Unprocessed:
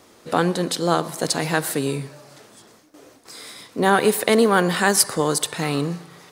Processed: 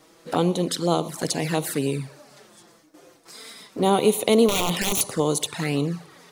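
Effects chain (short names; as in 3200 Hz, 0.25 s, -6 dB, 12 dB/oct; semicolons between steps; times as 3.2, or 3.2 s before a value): 4.48–5.01 wrapped overs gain 13.5 dB; envelope flanger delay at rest 6.7 ms, full sweep at -18 dBFS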